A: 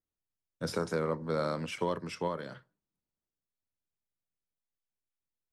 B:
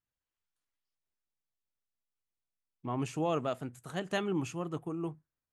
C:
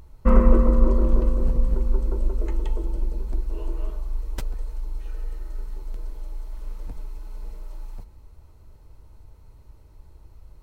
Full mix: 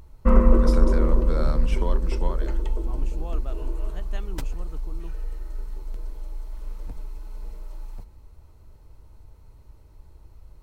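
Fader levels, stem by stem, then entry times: 0.0, -9.0, -0.5 dB; 0.00, 0.00, 0.00 s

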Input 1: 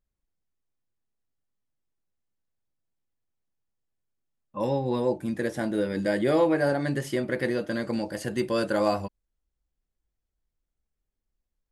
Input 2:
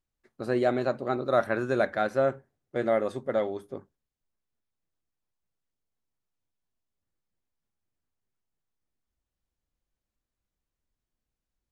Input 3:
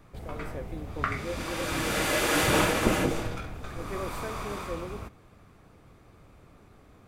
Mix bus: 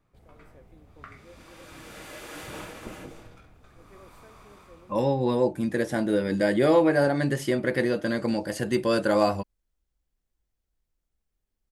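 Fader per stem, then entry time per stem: +2.5 dB, off, -16.0 dB; 0.35 s, off, 0.00 s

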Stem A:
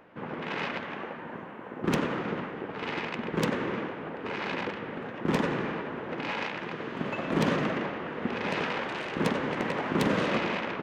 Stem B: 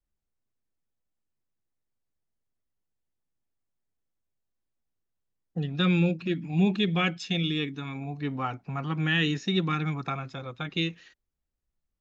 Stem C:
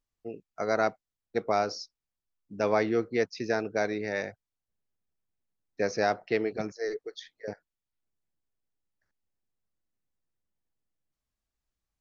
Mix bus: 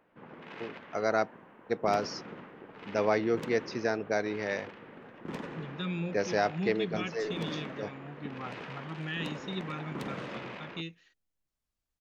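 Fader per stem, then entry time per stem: -12.5, -11.0, -1.5 dB; 0.00, 0.00, 0.35 s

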